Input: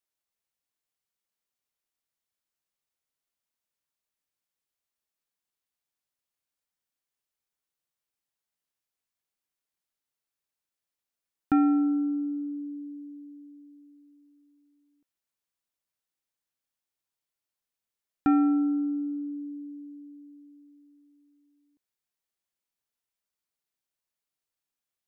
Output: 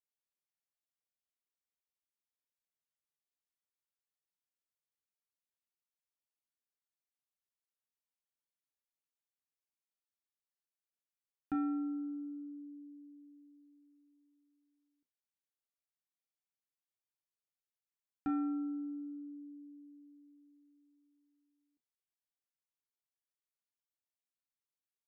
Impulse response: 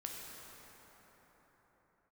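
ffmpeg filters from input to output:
-filter_complex "[1:a]atrim=start_sample=2205,atrim=end_sample=3087,asetrate=74970,aresample=44100[link_01];[0:a][link_01]afir=irnorm=-1:irlink=0,volume=-4.5dB"

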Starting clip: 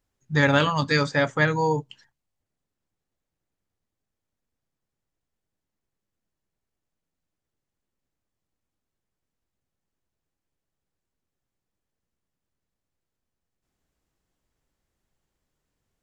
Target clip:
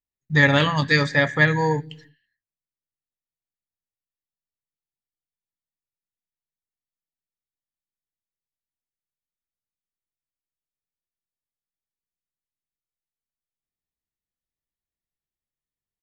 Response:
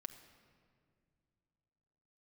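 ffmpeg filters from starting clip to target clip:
-filter_complex "[0:a]agate=range=-22dB:threshold=-57dB:ratio=16:detection=peak,asplit=2[link_01][link_02];[link_02]firequalizer=gain_entry='entry(170,0);entry(1100,-29);entry(1700,13);entry(2600,-3);entry(4000,6);entry(6500,-25);entry(9200,7)':delay=0.05:min_phase=1[link_03];[1:a]atrim=start_sample=2205,afade=type=out:start_time=0.39:duration=0.01,atrim=end_sample=17640[link_04];[link_03][link_04]afir=irnorm=-1:irlink=0,volume=-2dB[link_05];[link_01][link_05]amix=inputs=2:normalize=0"

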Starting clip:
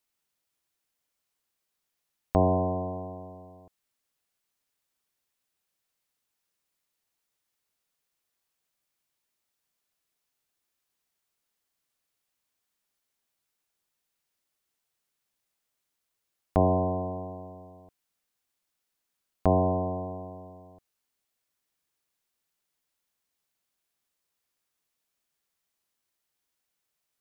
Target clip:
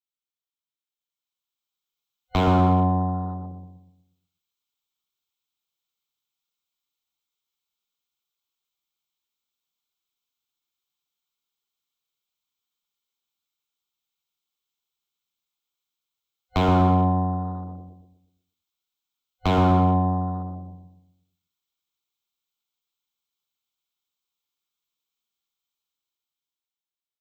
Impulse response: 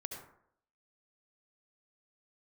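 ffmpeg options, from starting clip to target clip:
-filter_complex "[0:a]acrossover=split=150|870[link_01][link_02][link_03];[link_03]acontrast=48[link_04];[link_01][link_02][link_04]amix=inputs=3:normalize=0,afwtdn=0.0112,asoftclip=type=hard:threshold=-23.5dB,asplit=2[link_05][link_06];[1:a]atrim=start_sample=2205[link_07];[link_06][link_07]afir=irnorm=-1:irlink=0,volume=-16.5dB[link_08];[link_05][link_08]amix=inputs=2:normalize=0,dynaudnorm=framelen=390:gausssize=7:maxgain=11.5dB,superequalizer=8b=0.501:11b=0.316:13b=2:16b=0.251,asplit=2[link_09][link_10];[link_10]adelay=121,lowpass=frequency=890:poles=1,volume=-3.5dB,asplit=2[link_11][link_12];[link_12]adelay=121,lowpass=frequency=890:poles=1,volume=0.45,asplit=2[link_13][link_14];[link_14]adelay=121,lowpass=frequency=890:poles=1,volume=0.45,asplit=2[link_15][link_16];[link_16]adelay=121,lowpass=frequency=890:poles=1,volume=0.45,asplit=2[link_17][link_18];[link_18]adelay=121,lowpass=frequency=890:poles=1,volume=0.45,asplit=2[link_19][link_20];[link_20]adelay=121,lowpass=frequency=890:poles=1,volume=0.45[link_21];[link_09][link_11][link_13][link_15][link_17][link_19][link_21]amix=inputs=7:normalize=0,adynamicequalizer=threshold=0.0251:dfrequency=1900:dqfactor=0.7:tfrequency=1900:tqfactor=0.7:attack=5:release=100:ratio=0.375:range=3:mode=cutabove:tftype=highshelf,volume=-5.5dB"

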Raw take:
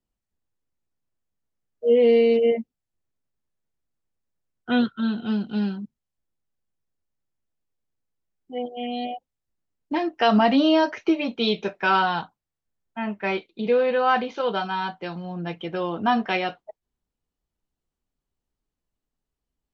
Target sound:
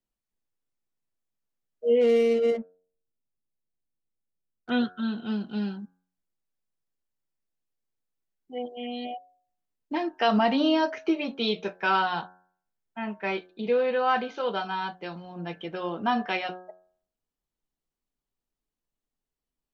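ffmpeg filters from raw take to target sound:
ffmpeg -i in.wav -filter_complex "[0:a]equalizer=frequency=68:width_type=o:width=1.8:gain=-7.5,bandreject=frequency=91.22:width_type=h:width=4,bandreject=frequency=182.44:width_type=h:width=4,bandreject=frequency=273.66:width_type=h:width=4,bandreject=frequency=364.88:width_type=h:width=4,bandreject=frequency=456.1:width_type=h:width=4,bandreject=frequency=547.32:width_type=h:width=4,bandreject=frequency=638.54:width_type=h:width=4,bandreject=frequency=729.76:width_type=h:width=4,bandreject=frequency=820.98:width_type=h:width=4,bandreject=frequency=912.2:width_type=h:width=4,bandreject=frequency=1003.42:width_type=h:width=4,bandreject=frequency=1094.64:width_type=h:width=4,bandreject=frequency=1185.86:width_type=h:width=4,bandreject=frequency=1277.08:width_type=h:width=4,bandreject=frequency=1368.3:width_type=h:width=4,bandreject=frequency=1459.52:width_type=h:width=4,bandreject=frequency=1550.74:width_type=h:width=4,bandreject=frequency=1641.96:width_type=h:width=4,bandreject=frequency=1733.18:width_type=h:width=4,asettb=1/sr,asplit=3[link_01][link_02][link_03];[link_01]atrim=end=2.014[link_04];[link_02]atrim=start=2.01:end=4.7,asetpts=PTS-STARTPTS,afade=type=in:duration=0.004:curve=qsin,afade=type=out:start_time=2.686:duration=0.004:curve=qsin,adynamicsmooth=sensitivity=5:basefreq=720[link_05];[link_03]atrim=start=4.696[link_06];[link_04][link_05]acrossfade=duration=0.004:curve1=hsin:curve2=qsin[link_07];[link_07][link_06]acrossfade=duration=0.004:curve1=qsin:curve2=hsin,volume=-3.5dB" out.wav

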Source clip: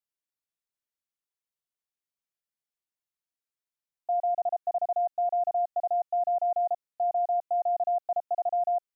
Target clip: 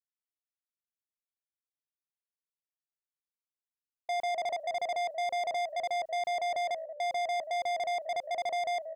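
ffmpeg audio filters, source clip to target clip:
ffmpeg -i in.wav -filter_complex "[0:a]agate=range=-33dB:threshold=-34dB:ratio=3:detection=peak,asplit=4[link_01][link_02][link_03][link_04];[link_02]adelay=181,afreqshift=-57,volume=-22dB[link_05];[link_03]adelay=362,afreqshift=-114,volume=-30.2dB[link_06];[link_04]adelay=543,afreqshift=-171,volume=-38.4dB[link_07];[link_01][link_05][link_06][link_07]amix=inputs=4:normalize=0,asoftclip=type=tanh:threshold=-38dB,volume=8dB" out.wav

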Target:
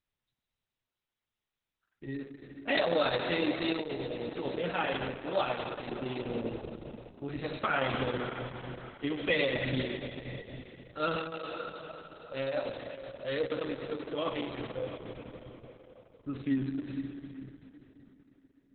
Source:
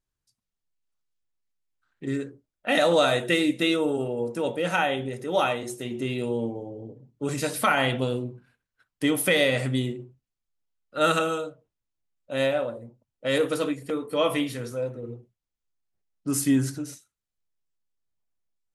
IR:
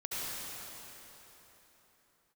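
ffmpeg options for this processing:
-filter_complex "[0:a]asplit=2[link_01][link_02];[1:a]atrim=start_sample=2205[link_03];[link_02][link_03]afir=irnorm=-1:irlink=0,volume=-7.5dB[link_04];[link_01][link_04]amix=inputs=2:normalize=0,asettb=1/sr,asplit=3[link_05][link_06][link_07];[link_05]atrim=end=3.794[link_08];[link_06]atrim=start=3.79:end=4.39,asetpts=PTS-STARTPTS,afade=type=in:duration=0.004:curve=qsin,afade=type=out:start_time=0.596:duration=0.004:curve=qsin,acrossover=split=310|5100[link_09][link_10][link_11];[link_09]acompressor=threshold=-29dB:ratio=4[link_12];[link_10]acompressor=threshold=-27dB:ratio=4[link_13];[link_11]acompressor=threshold=-53dB:ratio=4[link_14];[link_12][link_13][link_14]amix=inputs=3:normalize=0[link_15];[link_07]atrim=start=4.386[link_16];[link_08][link_15]acrossfade=duration=0.004:curve1=hsin:curve2=qsin[link_17];[link_17][link_16]acrossfade=duration=0.004:curve1=qsin:curve2=hsin,volume=-9dB" -ar 48000 -c:a libopus -b:a 6k

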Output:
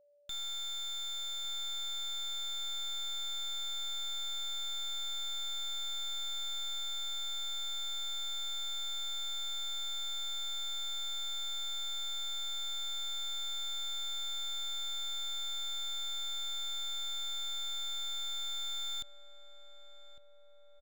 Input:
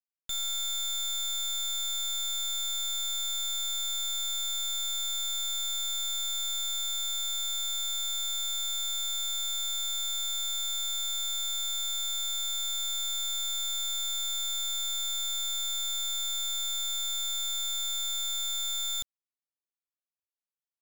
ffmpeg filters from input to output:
ffmpeg -i in.wav -filter_complex "[0:a]acrossover=split=5800[link_01][link_02];[link_02]acompressor=threshold=-49dB:ratio=4:attack=1:release=60[link_03];[link_01][link_03]amix=inputs=2:normalize=0,aeval=exprs='val(0)+0.00112*sin(2*PI*580*n/s)':channel_layout=same,asplit=2[link_04][link_05];[link_05]adelay=1155,lowpass=frequency=1500:poles=1,volume=-13dB,asplit=2[link_06][link_07];[link_07]adelay=1155,lowpass=frequency=1500:poles=1,volume=0.55,asplit=2[link_08][link_09];[link_09]adelay=1155,lowpass=frequency=1500:poles=1,volume=0.55,asplit=2[link_10][link_11];[link_11]adelay=1155,lowpass=frequency=1500:poles=1,volume=0.55,asplit=2[link_12][link_13];[link_13]adelay=1155,lowpass=frequency=1500:poles=1,volume=0.55,asplit=2[link_14][link_15];[link_15]adelay=1155,lowpass=frequency=1500:poles=1,volume=0.55[link_16];[link_04][link_06][link_08][link_10][link_12][link_14][link_16]amix=inputs=7:normalize=0,volume=-5dB" out.wav

